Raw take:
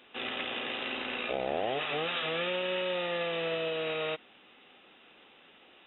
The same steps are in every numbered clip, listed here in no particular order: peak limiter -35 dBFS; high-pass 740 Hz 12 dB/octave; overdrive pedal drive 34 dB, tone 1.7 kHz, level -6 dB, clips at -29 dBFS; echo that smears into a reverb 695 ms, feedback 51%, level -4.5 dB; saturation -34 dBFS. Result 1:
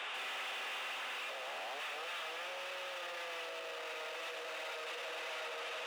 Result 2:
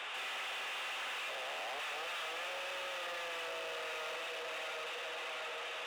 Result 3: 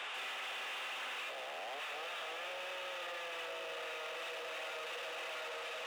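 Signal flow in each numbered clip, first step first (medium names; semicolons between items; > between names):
saturation > echo that smears into a reverb > overdrive pedal > peak limiter > high-pass; peak limiter > echo that smears into a reverb > overdrive pedal > high-pass > saturation; echo that smears into a reverb > overdrive pedal > high-pass > peak limiter > saturation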